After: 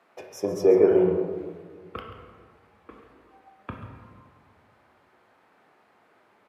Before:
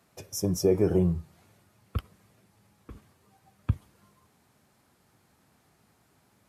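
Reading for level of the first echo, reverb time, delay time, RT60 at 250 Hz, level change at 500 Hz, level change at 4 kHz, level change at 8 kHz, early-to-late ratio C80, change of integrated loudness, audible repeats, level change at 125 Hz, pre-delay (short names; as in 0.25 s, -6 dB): -13.0 dB, 1.6 s, 0.137 s, 2.0 s, +7.5 dB, -5.5 dB, n/a, 5.5 dB, +6.5 dB, 1, -9.0 dB, 18 ms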